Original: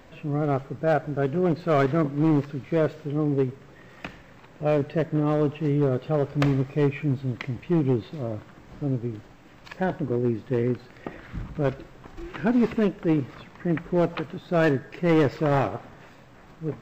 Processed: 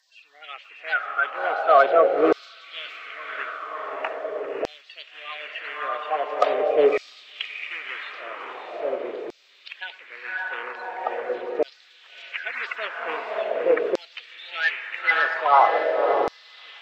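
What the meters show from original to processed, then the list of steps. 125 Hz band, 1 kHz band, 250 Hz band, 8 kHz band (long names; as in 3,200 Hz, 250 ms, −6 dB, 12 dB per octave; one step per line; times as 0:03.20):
below −30 dB, +9.0 dB, −13.0 dB, can't be measured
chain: spectral magnitudes quantised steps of 30 dB
three-way crossover with the lows and the highs turned down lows −17 dB, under 420 Hz, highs −16 dB, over 4,400 Hz
feedback delay with all-pass diffusion 592 ms, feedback 53%, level −5 dB
auto-filter high-pass saw down 0.43 Hz 390–5,100 Hz
level +5.5 dB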